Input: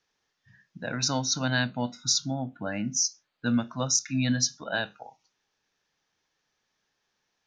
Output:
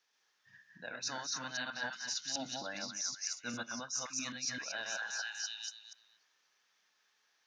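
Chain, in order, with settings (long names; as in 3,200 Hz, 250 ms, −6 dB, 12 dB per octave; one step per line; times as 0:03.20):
delay that plays each chunk backwards 131 ms, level −1 dB
high-pass filter 920 Hz 6 dB per octave
echo through a band-pass that steps 243 ms, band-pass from 1,400 Hz, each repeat 0.7 octaves, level −1 dB
reversed playback
downward compressor 6 to 1, threshold −37 dBFS, peak gain reduction 17 dB
reversed playback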